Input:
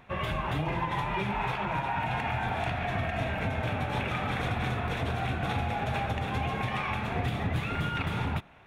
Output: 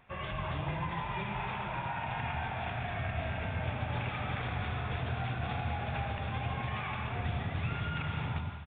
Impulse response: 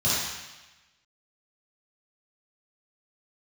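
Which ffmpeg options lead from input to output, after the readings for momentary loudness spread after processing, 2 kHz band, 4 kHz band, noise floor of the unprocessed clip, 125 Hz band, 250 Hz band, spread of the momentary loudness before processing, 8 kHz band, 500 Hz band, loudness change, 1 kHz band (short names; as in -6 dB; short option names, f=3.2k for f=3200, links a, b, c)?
1 LU, -5.0 dB, -5.0 dB, -35 dBFS, -3.0 dB, -6.5 dB, 1 LU, under -25 dB, -6.5 dB, -5.0 dB, -5.5 dB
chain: -filter_complex "[0:a]aresample=8000,aresample=44100,equalizer=f=280:t=o:w=2.1:g=-4,asplit=2[a][b];[1:a]atrim=start_sample=2205,adelay=82[c];[b][c]afir=irnorm=-1:irlink=0,volume=-18.5dB[d];[a][d]amix=inputs=2:normalize=0,volume=-6dB"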